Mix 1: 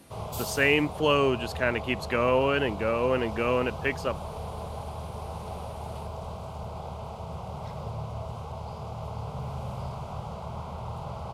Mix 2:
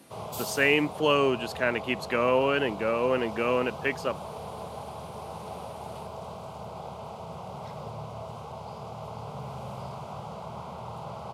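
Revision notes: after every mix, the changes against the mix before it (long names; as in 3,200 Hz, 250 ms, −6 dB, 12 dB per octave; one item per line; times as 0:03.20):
master: add high-pass filter 150 Hz 12 dB per octave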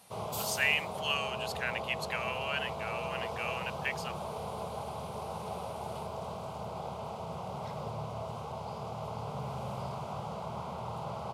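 speech: add Bessel high-pass filter 2,400 Hz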